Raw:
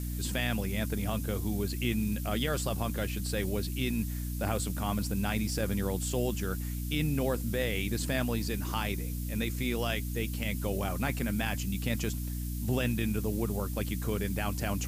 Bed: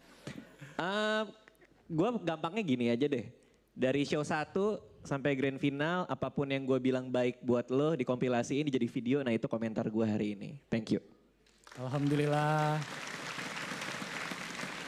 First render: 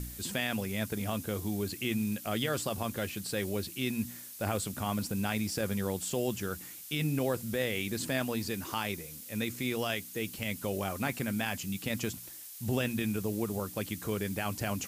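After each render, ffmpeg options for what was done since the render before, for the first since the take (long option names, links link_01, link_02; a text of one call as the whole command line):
ffmpeg -i in.wav -af "bandreject=frequency=60:width_type=h:width=4,bandreject=frequency=120:width_type=h:width=4,bandreject=frequency=180:width_type=h:width=4,bandreject=frequency=240:width_type=h:width=4,bandreject=frequency=300:width_type=h:width=4" out.wav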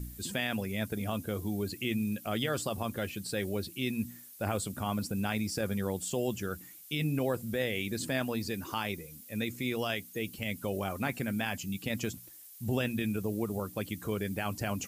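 ffmpeg -i in.wav -af "afftdn=noise_reduction=9:noise_floor=-47" out.wav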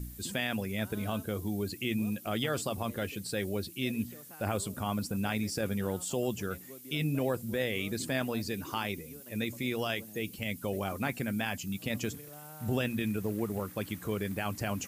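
ffmpeg -i in.wav -i bed.wav -filter_complex "[1:a]volume=-20dB[link_01];[0:a][link_01]amix=inputs=2:normalize=0" out.wav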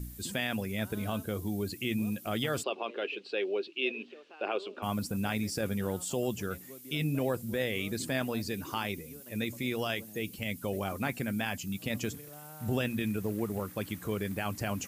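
ffmpeg -i in.wav -filter_complex "[0:a]asplit=3[link_01][link_02][link_03];[link_01]afade=type=out:start_time=2.62:duration=0.02[link_04];[link_02]highpass=frequency=340:width=0.5412,highpass=frequency=340:width=1.3066,equalizer=frequency=390:width_type=q:width=4:gain=8,equalizer=frequency=1900:width_type=q:width=4:gain=-5,equalizer=frequency=2700:width_type=q:width=4:gain=10,lowpass=frequency=3900:width=0.5412,lowpass=frequency=3900:width=1.3066,afade=type=in:start_time=2.62:duration=0.02,afade=type=out:start_time=4.82:duration=0.02[link_05];[link_03]afade=type=in:start_time=4.82:duration=0.02[link_06];[link_04][link_05][link_06]amix=inputs=3:normalize=0" out.wav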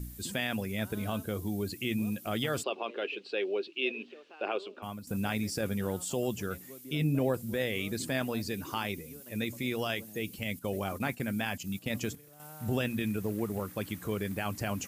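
ffmpeg -i in.wav -filter_complex "[0:a]asettb=1/sr,asplit=3[link_01][link_02][link_03];[link_01]atrim=end=6.844[link_04];[link_02]atrim=start=6.84:end=7.34,asetpts=PTS-STARTPTS,afade=type=in:duration=0.004:curve=qsin,afade=type=out:start_time=0.496:duration=0.004:curve=qsin,tiltshelf=frequency=970:gain=3[link_05];[link_03]atrim=start=7.336[link_06];[link_04][link_05]acrossfade=duration=0.004:curve1=hsin:curve2=qsin[link_07];[link_07][link_06]acrossfade=duration=0.004:curve1=qsin:curve2=hsin,asettb=1/sr,asplit=3[link_08][link_09][link_10];[link_08]atrim=end=10.594[link_11];[link_09]atrim=start=10.59:end=12.4,asetpts=PTS-STARTPTS,afade=type=in:duration=0.004:curve=qsin,afade=type=out:start_time=1.806:duration=0.004:curve=qsin,agate=range=-8dB:threshold=-42dB:ratio=16:release=100:detection=peak[link_12];[link_10]atrim=start=12.396[link_13];[link_11][link_12]acrossfade=duration=0.004:curve1=hsin:curve2=qsin[link_14];[link_14][link_13]acrossfade=duration=0.004:curve1=qsin:curve2=hsin,asplit=2[link_15][link_16];[link_15]atrim=end=5.07,asetpts=PTS-STARTPTS,afade=type=out:start_time=4.51:duration=0.56:silence=0.177828[link_17];[link_16]atrim=start=5.07,asetpts=PTS-STARTPTS,afade=type=in:duration=0.004:curve=hsin:silence=0.177828[link_18];[link_17][link_18]concat=n=2:v=0:a=1" out.wav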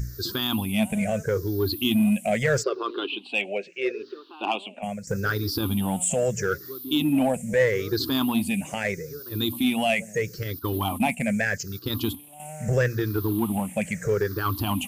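ffmpeg -i in.wav -filter_complex "[0:a]afftfilt=real='re*pow(10,23/40*sin(2*PI*(0.55*log(max(b,1)*sr/1024/100)/log(2)-(-0.78)*(pts-256)/sr)))':imag='im*pow(10,23/40*sin(2*PI*(0.55*log(max(b,1)*sr/1024/100)/log(2)-(-0.78)*(pts-256)/sr)))':win_size=1024:overlap=0.75,asplit=2[link_01][link_02];[link_02]asoftclip=type=hard:threshold=-23dB,volume=-6dB[link_03];[link_01][link_03]amix=inputs=2:normalize=0" out.wav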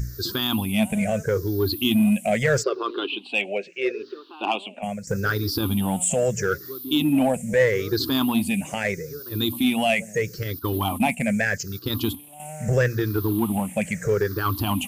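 ffmpeg -i in.wav -af "volume=2dB" out.wav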